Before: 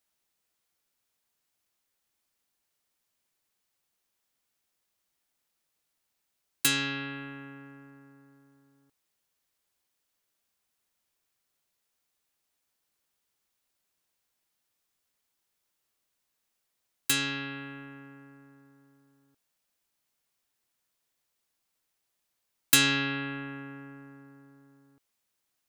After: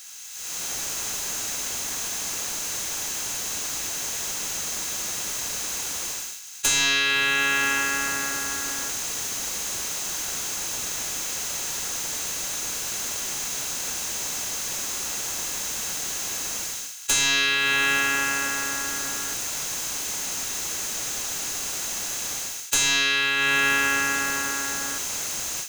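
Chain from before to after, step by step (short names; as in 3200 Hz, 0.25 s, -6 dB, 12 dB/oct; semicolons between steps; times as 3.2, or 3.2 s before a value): per-bin compression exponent 0.6; bell 6400 Hz +14 dB 0.52 oct; AGC gain up to 16 dB; tilt +4.5 dB/oct; overdrive pedal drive 21 dB, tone 1600 Hz, clips at 0 dBFS; gain -6.5 dB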